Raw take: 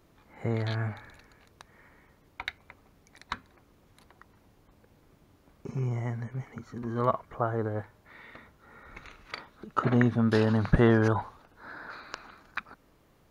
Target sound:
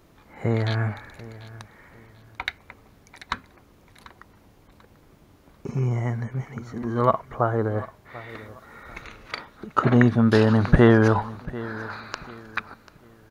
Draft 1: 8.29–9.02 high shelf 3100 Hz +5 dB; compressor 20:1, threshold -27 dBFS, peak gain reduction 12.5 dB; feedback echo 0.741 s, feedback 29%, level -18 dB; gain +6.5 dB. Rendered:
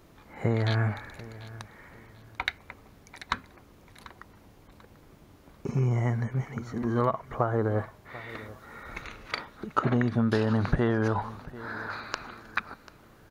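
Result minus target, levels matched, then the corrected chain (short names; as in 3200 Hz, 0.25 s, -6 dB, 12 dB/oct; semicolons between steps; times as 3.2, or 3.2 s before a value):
compressor: peak gain reduction +12.5 dB
8.29–9.02 high shelf 3100 Hz +5 dB; feedback echo 0.741 s, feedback 29%, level -18 dB; gain +6.5 dB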